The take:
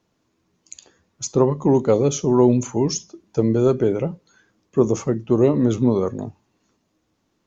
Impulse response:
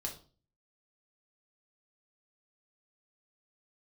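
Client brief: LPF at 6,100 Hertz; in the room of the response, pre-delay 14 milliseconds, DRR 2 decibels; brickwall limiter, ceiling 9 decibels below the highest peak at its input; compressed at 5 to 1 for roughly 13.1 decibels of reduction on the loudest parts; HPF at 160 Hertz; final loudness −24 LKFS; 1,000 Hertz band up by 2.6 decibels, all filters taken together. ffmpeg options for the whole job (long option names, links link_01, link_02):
-filter_complex "[0:a]highpass=160,lowpass=6100,equalizer=frequency=1000:width_type=o:gain=3,acompressor=threshold=-26dB:ratio=5,alimiter=limit=-23.5dB:level=0:latency=1,asplit=2[link_01][link_02];[1:a]atrim=start_sample=2205,adelay=14[link_03];[link_02][link_03]afir=irnorm=-1:irlink=0,volume=-1.5dB[link_04];[link_01][link_04]amix=inputs=2:normalize=0,volume=8dB"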